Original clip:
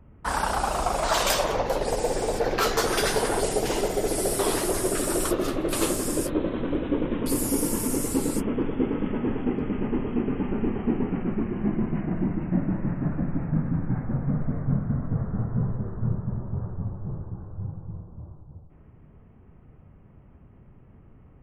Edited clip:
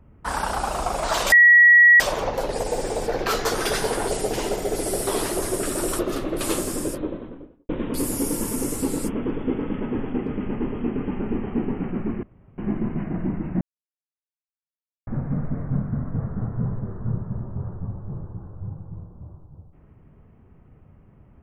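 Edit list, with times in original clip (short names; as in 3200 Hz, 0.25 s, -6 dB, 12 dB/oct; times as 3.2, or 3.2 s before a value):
1.32 add tone 1920 Hz -8.5 dBFS 0.68 s
6.02–7.01 studio fade out
11.55 insert room tone 0.35 s
12.58–14.04 mute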